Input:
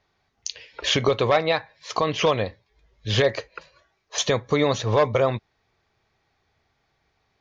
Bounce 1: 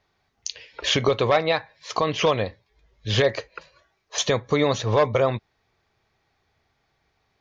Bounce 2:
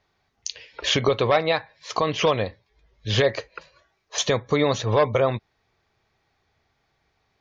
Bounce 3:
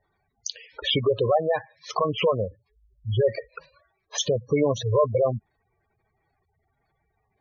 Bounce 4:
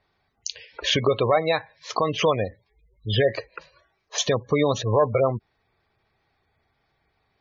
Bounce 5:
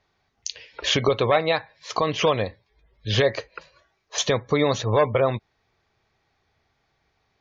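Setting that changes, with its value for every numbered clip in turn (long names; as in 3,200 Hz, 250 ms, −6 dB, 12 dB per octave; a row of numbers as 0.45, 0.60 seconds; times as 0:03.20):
gate on every frequency bin, under each frame's peak: −60, −45, −10, −20, −35 decibels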